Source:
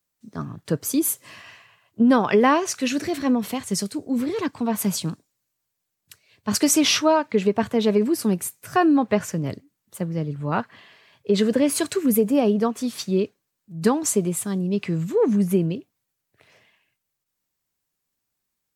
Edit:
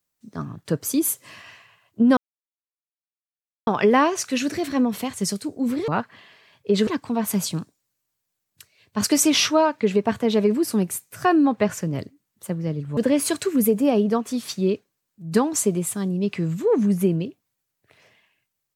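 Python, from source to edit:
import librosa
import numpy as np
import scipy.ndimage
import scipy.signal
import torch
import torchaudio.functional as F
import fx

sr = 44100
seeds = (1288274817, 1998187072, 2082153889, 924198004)

y = fx.edit(x, sr, fx.insert_silence(at_s=2.17, length_s=1.5),
    fx.move(start_s=10.48, length_s=0.99, to_s=4.38), tone=tone)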